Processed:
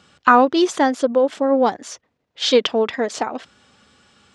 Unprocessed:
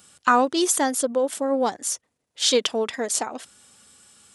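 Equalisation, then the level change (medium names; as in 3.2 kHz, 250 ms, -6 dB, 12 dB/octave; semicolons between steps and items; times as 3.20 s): distance through air 190 m; +6.5 dB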